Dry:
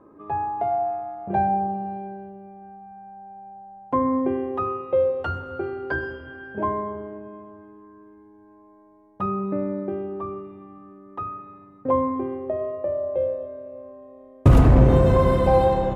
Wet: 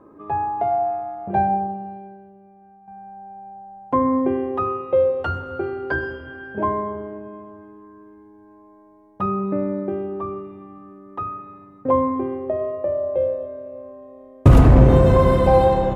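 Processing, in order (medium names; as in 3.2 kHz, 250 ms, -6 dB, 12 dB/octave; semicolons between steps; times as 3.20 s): 1.30–2.88 s: upward expansion 1.5:1, over -38 dBFS; trim +3 dB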